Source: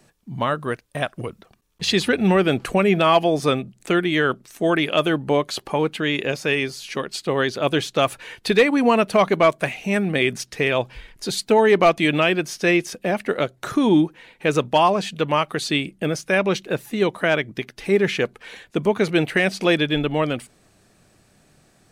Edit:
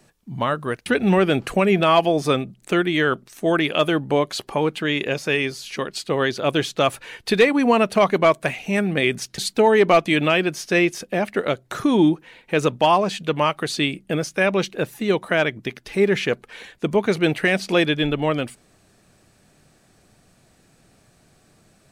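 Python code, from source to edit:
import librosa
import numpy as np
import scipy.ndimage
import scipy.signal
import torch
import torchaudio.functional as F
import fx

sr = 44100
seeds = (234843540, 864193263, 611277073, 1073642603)

y = fx.edit(x, sr, fx.cut(start_s=0.86, length_s=1.18),
    fx.cut(start_s=10.56, length_s=0.74), tone=tone)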